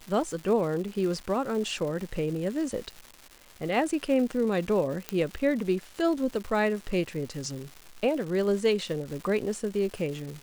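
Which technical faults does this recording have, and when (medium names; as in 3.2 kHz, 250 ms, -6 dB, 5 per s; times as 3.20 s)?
crackle 390 per s -36 dBFS
5.09 s: pop -13 dBFS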